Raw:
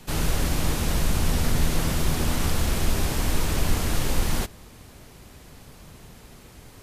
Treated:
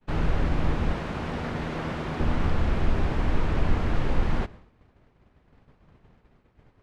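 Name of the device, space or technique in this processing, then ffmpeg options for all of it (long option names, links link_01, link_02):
hearing-loss simulation: -filter_complex "[0:a]lowpass=2000,agate=range=-33dB:threshold=-37dB:ratio=3:detection=peak,asettb=1/sr,asplit=3[link_01][link_02][link_03];[link_01]atrim=end=0.934[link_04];[link_02]atrim=start=0.93:end=2.2,asetpts=PTS-STARTPTS,afade=type=in:duration=0.004:curve=qsin,afade=type=out:start_time=1.266:duration=0.004:curve=qsin,highpass=frequency=240:poles=1[link_05];[link_03]atrim=start=2.196[link_06];[link_04][link_05]acrossfade=duration=0.004:curve1=hsin:curve2=qsin[link_07];[link_07][link_06]acrossfade=duration=0.004:curve1=qsin:curve2=hsin"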